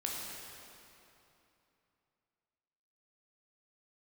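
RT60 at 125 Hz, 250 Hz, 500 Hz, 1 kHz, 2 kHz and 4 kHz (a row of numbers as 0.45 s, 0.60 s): 3.4 s, 3.2 s, 2.9 s, 3.0 s, 2.6 s, 2.3 s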